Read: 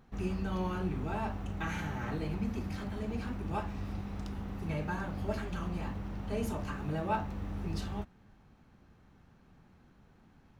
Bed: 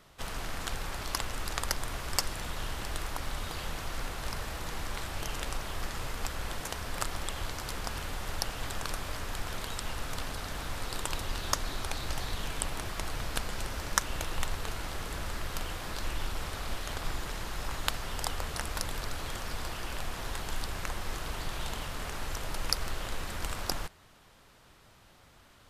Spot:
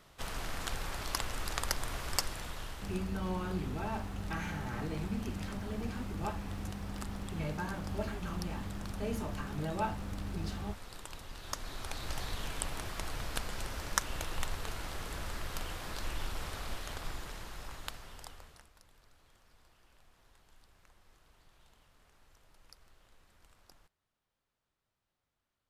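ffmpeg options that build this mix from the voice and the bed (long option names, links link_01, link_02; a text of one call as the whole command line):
ffmpeg -i stem1.wav -i stem2.wav -filter_complex "[0:a]adelay=2700,volume=-2dB[link_01];[1:a]volume=7dB,afade=type=out:start_time=2.08:duration=0.95:silence=0.298538,afade=type=in:start_time=11.34:duration=0.85:silence=0.354813,afade=type=out:start_time=16.53:duration=2.18:silence=0.0562341[link_02];[link_01][link_02]amix=inputs=2:normalize=0" out.wav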